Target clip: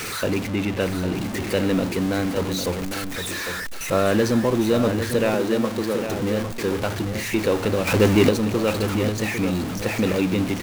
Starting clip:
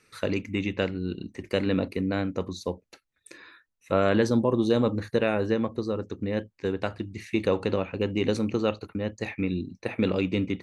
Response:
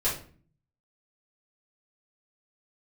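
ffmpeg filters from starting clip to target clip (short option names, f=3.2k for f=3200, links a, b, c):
-filter_complex "[0:a]aeval=exprs='val(0)+0.5*0.0531*sgn(val(0))':c=same,asettb=1/sr,asplit=3[a][b][c];[a]atrim=end=0.474[d];[b]atrim=start=0.47:end=1.15,asetpts=PTS-STARTPTS,afade=t=in:d=0.004:c=qsin,afade=t=out:st=0.676:d=0.004:c=qsin,highshelf=f=5.3k:g=-7.5[e];[c]atrim=start=1.146[f];[d][e]acrossfade=d=0.004:c1=hsin:c2=qsin[g];[g][f]acrossfade=d=0.004:c1=qsin:c2=hsin,asettb=1/sr,asplit=3[h][i][j];[h]atrim=end=5.344[k];[i]atrim=start=5.34:end=6.09,asetpts=PTS-STARTPTS,afade=t=in:d=0.004:c=qsin,afade=t=out:st=0.746:d=0.004:c=qsin,highpass=f=190:w=0.5412,highpass=f=190:w=1.3066[l];[j]atrim=start=6.086[m];[k][l]acrossfade=d=0.004:c1=hsin:c2=qsin[n];[n][m]acrossfade=d=0.004:c1=qsin:c2=hsin,asettb=1/sr,asplit=3[o][p][q];[o]atrim=end=7.874[r];[p]atrim=start=7.87:end=8.29,asetpts=PTS-STARTPTS,afade=t=in:d=0.004:c=qsin,afade=t=out:st=0.416:d=0.004:c=qsin,acontrast=84[s];[q]atrim=start=8.286[t];[r][s]acrossfade=d=0.004:c1=hsin:c2=qsin[u];[u][t]acrossfade=d=0.004:c1=qsin:c2=hsin,aecho=1:1:803:0.376,volume=1dB"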